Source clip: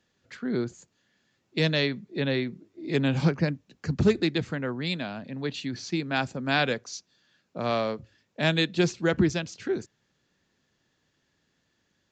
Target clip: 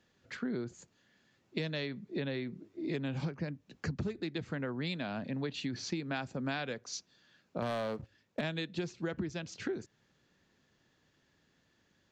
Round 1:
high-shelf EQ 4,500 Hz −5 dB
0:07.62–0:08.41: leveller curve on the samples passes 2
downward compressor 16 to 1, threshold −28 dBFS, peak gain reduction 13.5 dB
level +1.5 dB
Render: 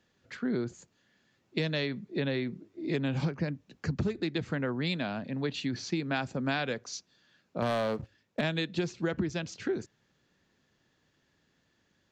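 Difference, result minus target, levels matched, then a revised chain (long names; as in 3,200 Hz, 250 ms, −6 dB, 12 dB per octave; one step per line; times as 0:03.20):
downward compressor: peak gain reduction −5.5 dB
high-shelf EQ 4,500 Hz −5 dB
0:07.62–0:08.41: leveller curve on the samples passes 2
downward compressor 16 to 1, threshold −34 dBFS, peak gain reduction 19.5 dB
level +1.5 dB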